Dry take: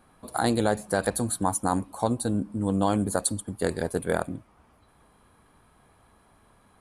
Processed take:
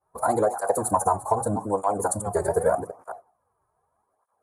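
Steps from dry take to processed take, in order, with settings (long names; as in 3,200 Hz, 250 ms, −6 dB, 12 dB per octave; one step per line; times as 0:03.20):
delay that plays each chunk backwards 320 ms, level −14 dB
mains-hum notches 60/120/180 Hz
downward expander −46 dBFS
notch filter 2,700 Hz, Q 8.9
in parallel at +0.5 dB: speech leveller within 4 dB
on the sum: drawn EQ curve 100 Hz 0 dB, 240 Hz −9 dB, 470 Hz +6 dB, 1,000 Hz +9 dB, 3,600 Hz −20 dB, 6,700 Hz +1 dB
phase-vocoder stretch with locked phases 0.65×
downward compressor, threshold −15 dBFS, peak gain reduction 7.5 dB
on a send at −20 dB: parametric band 730 Hz +14.5 dB 0.56 octaves + convolution reverb RT60 0.40 s, pre-delay 5 ms
on the sum: through-zero flanger with one copy inverted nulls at 0.82 Hz, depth 4.4 ms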